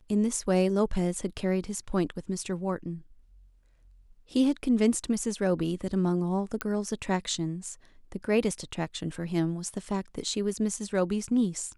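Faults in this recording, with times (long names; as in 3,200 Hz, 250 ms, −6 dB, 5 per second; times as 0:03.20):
0:06.61: click −14 dBFS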